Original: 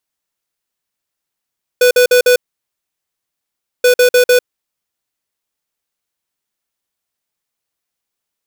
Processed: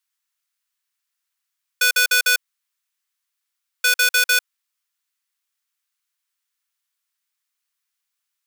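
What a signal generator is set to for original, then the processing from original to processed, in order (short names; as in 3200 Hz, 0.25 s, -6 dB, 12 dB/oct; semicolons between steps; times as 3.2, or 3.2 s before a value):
beep pattern square 495 Hz, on 0.10 s, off 0.05 s, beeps 4, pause 1.48 s, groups 2, -8.5 dBFS
HPF 1100 Hz 24 dB/oct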